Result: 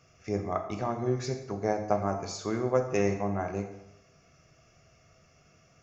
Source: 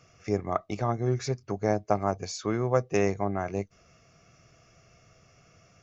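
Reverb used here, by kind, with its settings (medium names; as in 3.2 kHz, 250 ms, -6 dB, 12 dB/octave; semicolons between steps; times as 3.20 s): plate-style reverb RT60 0.87 s, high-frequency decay 0.85×, DRR 4 dB; trim -3.5 dB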